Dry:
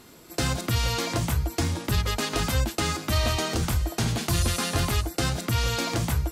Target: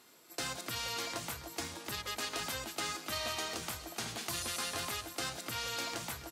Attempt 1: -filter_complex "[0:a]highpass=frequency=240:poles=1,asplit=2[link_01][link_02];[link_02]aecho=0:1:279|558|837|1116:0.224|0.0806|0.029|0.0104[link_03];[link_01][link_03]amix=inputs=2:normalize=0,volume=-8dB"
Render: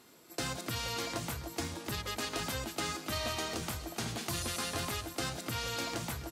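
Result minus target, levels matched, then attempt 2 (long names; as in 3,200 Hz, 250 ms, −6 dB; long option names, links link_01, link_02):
250 Hz band +5.0 dB
-filter_complex "[0:a]highpass=frequency=700:poles=1,asplit=2[link_01][link_02];[link_02]aecho=0:1:279|558|837|1116:0.224|0.0806|0.029|0.0104[link_03];[link_01][link_03]amix=inputs=2:normalize=0,volume=-8dB"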